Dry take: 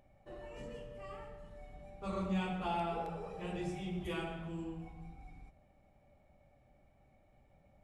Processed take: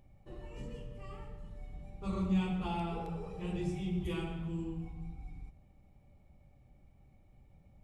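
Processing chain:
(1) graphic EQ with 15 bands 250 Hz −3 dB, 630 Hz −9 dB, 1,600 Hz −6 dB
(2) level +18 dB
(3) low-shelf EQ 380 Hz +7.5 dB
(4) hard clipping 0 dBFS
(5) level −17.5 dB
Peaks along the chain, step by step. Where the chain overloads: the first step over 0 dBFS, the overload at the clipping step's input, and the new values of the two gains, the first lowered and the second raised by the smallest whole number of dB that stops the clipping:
−28.0, −10.0, −4.5, −4.5, −22.0 dBFS
no step passes full scale

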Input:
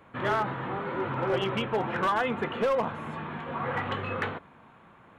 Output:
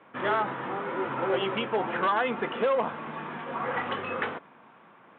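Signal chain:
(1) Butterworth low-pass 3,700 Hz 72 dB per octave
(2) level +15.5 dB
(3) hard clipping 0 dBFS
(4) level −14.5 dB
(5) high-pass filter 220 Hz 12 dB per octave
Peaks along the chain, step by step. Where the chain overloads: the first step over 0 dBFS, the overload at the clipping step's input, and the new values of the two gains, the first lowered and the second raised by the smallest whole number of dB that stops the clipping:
−18.5, −3.0, −3.0, −17.5, −15.5 dBFS
no step passes full scale

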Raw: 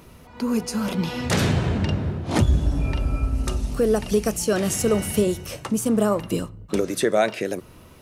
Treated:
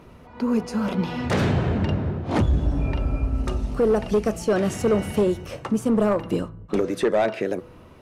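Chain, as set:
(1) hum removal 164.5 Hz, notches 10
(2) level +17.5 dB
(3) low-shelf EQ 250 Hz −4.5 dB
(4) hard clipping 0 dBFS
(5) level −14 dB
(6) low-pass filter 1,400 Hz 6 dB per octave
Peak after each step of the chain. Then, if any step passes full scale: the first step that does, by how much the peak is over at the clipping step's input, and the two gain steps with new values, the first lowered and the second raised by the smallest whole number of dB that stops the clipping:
−7.0, +10.5, +9.5, 0.0, −14.0, −14.0 dBFS
step 2, 9.5 dB
step 2 +7.5 dB, step 5 −4 dB

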